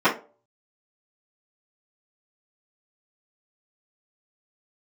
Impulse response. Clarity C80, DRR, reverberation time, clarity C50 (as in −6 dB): 18.0 dB, −13.0 dB, 0.40 s, 11.0 dB